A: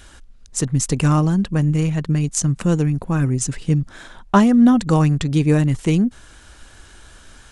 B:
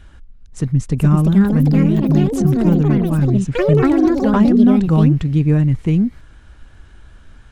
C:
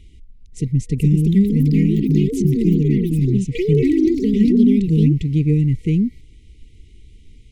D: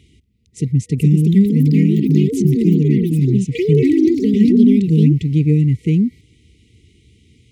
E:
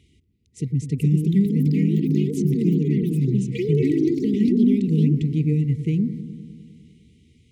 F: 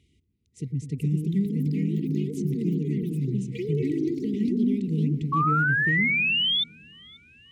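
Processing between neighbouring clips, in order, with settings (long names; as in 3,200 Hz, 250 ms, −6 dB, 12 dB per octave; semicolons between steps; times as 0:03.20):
bass and treble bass +9 dB, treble −12 dB; delay with pitch and tempo change per echo 576 ms, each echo +5 semitones, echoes 3; level −4.5 dB
brick-wall band-stop 480–1,900 Hz; level −2 dB
high-pass filter 81 Hz 24 dB per octave; level +2.5 dB
delay with a low-pass on its return 101 ms, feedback 73%, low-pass 710 Hz, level −11.5 dB; level −7 dB
sound drawn into the spectrogram rise, 0:05.32–0:06.64, 1,100–3,600 Hz −17 dBFS; delay with a high-pass on its return 533 ms, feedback 69%, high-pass 3,900 Hz, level −20.5 dB; level −6.5 dB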